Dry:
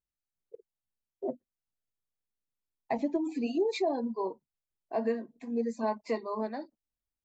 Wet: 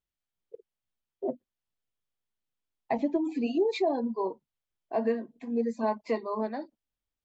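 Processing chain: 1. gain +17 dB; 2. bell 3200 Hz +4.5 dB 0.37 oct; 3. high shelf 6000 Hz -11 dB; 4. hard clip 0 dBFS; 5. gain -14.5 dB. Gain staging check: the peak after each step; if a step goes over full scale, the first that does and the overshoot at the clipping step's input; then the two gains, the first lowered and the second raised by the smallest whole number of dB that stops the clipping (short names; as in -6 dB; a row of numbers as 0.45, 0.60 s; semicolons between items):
-2.0, -2.0, -2.0, -2.0, -16.5 dBFS; no overload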